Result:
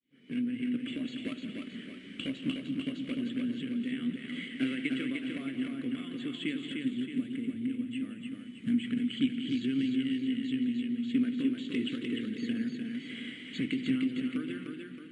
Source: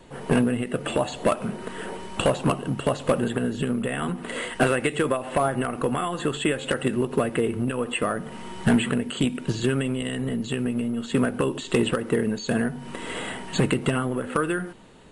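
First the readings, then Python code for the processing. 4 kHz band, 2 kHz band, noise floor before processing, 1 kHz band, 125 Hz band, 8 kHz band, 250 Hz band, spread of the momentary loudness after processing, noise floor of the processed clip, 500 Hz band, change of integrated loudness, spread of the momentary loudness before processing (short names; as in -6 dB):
-7.0 dB, -11.5 dB, -38 dBFS, under -25 dB, -16.5 dB, under -20 dB, -4.5 dB, 9 LU, -47 dBFS, -21.0 dB, -8.0 dB, 8 LU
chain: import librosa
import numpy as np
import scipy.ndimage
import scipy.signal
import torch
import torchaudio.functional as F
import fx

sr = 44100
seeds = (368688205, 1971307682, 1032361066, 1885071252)

p1 = fx.fade_in_head(x, sr, length_s=0.61)
p2 = fx.vowel_filter(p1, sr, vowel='i')
p3 = fx.peak_eq(p2, sr, hz=460.0, db=-6.5, octaves=2.4)
p4 = fx.spec_box(p3, sr, start_s=6.56, length_s=2.28, low_hz=310.0, high_hz=6300.0, gain_db=-7)
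p5 = p4 + fx.echo_multitap(p4, sr, ms=(173, 300, 620), db=(-13.0, -4.0, -10.5), dry=0)
p6 = fx.echo_warbled(p5, sr, ms=232, feedback_pct=70, rate_hz=2.8, cents=118, wet_db=-17)
y = F.gain(torch.from_numpy(p6), 3.5).numpy()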